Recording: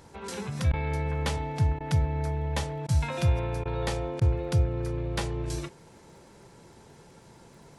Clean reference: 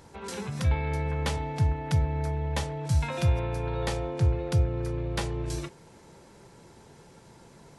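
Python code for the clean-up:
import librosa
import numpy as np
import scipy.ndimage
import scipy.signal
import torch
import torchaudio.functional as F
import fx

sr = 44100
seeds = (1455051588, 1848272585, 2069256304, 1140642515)

y = fx.fix_declick_ar(x, sr, threshold=6.5)
y = fx.fix_interpolate(y, sr, at_s=(0.72, 1.79, 2.87, 3.64, 4.2), length_ms=13.0)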